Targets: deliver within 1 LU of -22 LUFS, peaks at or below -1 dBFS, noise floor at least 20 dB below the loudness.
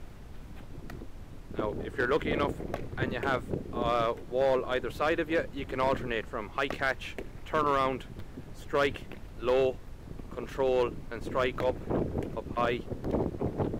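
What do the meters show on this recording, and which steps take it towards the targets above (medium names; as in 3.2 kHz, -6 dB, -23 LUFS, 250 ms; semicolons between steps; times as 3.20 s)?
clipped samples 0.7%; clipping level -19.5 dBFS; noise floor -46 dBFS; noise floor target -51 dBFS; loudness -31.0 LUFS; peak level -19.5 dBFS; loudness target -22.0 LUFS
-> clip repair -19.5 dBFS; noise print and reduce 6 dB; trim +9 dB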